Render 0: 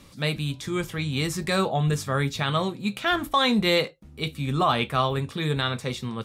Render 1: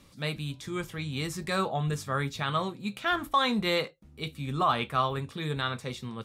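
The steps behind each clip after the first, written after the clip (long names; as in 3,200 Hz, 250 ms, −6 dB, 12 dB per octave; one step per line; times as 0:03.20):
dynamic equaliser 1,200 Hz, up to +5 dB, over −35 dBFS, Q 1.4
level −6.5 dB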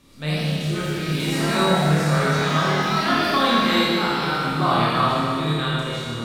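flutter between parallel walls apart 4.5 metres, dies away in 0.28 s
delay with pitch and tempo change per echo 101 ms, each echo +3 semitones, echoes 3, each echo −6 dB
four-comb reverb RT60 2.4 s, combs from 26 ms, DRR −6 dB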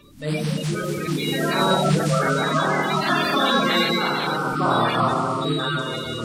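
spectral magnitudes quantised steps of 30 dB
reversed playback
upward compression, threshold −26 dBFS
reversed playback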